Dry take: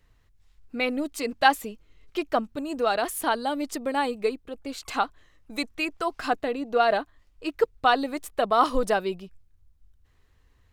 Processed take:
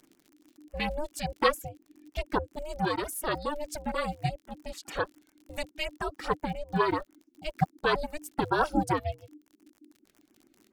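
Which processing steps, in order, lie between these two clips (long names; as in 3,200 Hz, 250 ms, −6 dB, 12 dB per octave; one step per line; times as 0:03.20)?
reverb reduction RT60 0.85 s
ring modulation 300 Hz
surface crackle 60 per second −43 dBFS
auto-filter notch sine 7.2 Hz 840–4,300 Hz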